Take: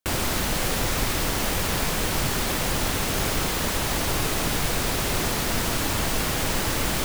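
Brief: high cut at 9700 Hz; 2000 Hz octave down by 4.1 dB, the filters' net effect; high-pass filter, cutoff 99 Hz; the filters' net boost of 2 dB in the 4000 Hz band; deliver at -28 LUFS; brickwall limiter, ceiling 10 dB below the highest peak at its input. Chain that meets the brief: HPF 99 Hz; LPF 9700 Hz; bell 2000 Hz -6.5 dB; bell 4000 Hz +4.5 dB; gain +3.5 dB; limiter -20 dBFS

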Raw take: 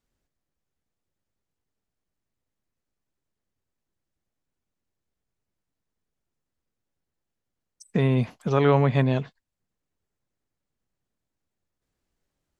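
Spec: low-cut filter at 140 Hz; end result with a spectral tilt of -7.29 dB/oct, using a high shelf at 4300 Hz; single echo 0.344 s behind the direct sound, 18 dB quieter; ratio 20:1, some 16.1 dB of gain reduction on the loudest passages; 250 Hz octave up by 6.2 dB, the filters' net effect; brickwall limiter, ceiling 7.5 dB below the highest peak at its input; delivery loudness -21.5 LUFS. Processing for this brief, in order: HPF 140 Hz; bell 250 Hz +8 dB; high shelf 4300 Hz -4.5 dB; compressor 20:1, threshold -27 dBFS; limiter -24 dBFS; echo 0.344 s -18 dB; gain +12.5 dB

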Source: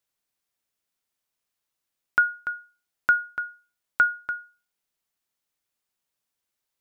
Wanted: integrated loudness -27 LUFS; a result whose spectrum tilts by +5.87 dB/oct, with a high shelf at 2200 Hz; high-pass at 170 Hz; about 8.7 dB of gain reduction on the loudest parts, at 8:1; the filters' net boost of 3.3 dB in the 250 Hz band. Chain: HPF 170 Hz; bell 250 Hz +6 dB; high shelf 2200 Hz -8.5 dB; compressor 8:1, threshold -26 dBFS; gain +8 dB

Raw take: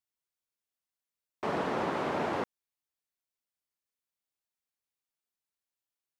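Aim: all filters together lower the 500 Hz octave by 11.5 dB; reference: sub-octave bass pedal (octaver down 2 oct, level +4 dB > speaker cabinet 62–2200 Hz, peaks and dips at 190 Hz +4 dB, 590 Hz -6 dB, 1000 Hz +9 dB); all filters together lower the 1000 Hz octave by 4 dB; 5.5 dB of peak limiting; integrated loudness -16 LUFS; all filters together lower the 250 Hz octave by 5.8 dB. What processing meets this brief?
bell 250 Hz -6 dB; bell 500 Hz -9 dB; bell 1000 Hz -7 dB; limiter -33 dBFS; octaver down 2 oct, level +4 dB; speaker cabinet 62–2200 Hz, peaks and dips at 190 Hz +4 dB, 590 Hz -6 dB, 1000 Hz +9 dB; gain +25.5 dB

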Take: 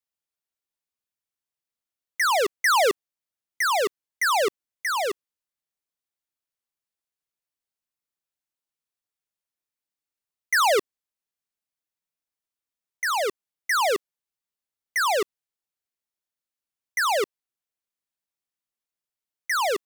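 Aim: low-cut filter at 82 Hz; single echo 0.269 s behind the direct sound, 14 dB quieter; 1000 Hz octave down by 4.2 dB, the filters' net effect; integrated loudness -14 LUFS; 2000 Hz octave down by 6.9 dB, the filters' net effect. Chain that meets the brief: HPF 82 Hz; bell 1000 Hz -3.5 dB; bell 2000 Hz -7.5 dB; echo 0.269 s -14 dB; gain +13 dB

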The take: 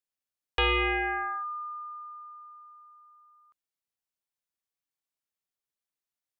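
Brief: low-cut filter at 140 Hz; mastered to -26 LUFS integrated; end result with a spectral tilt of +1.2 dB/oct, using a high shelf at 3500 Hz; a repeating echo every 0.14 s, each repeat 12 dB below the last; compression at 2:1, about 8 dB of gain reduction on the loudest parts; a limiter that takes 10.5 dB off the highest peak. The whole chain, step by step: HPF 140 Hz; high shelf 3500 Hz +4.5 dB; compressor 2:1, threshold -36 dBFS; limiter -29 dBFS; feedback echo 0.14 s, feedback 25%, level -12 dB; gain +11 dB

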